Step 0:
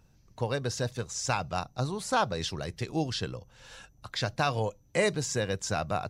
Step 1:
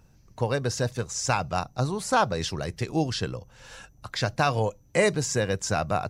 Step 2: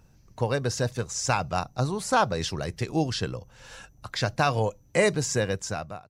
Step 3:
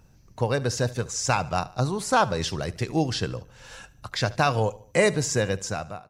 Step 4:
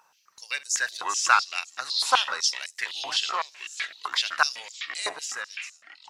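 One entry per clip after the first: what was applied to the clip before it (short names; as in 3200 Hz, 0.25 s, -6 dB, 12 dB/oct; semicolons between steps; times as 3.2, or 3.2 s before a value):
bell 3600 Hz -4 dB 0.65 oct; gain +4.5 dB
ending faded out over 0.68 s
feedback echo 73 ms, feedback 44%, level -20 dB; gain +1.5 dB
ending faded out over 1.80 s; echoes that change speed 0.325 s, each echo -6 st, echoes 2, each echo -6 dB; stepped high-pass 7.9 Hz 980–7000 Hz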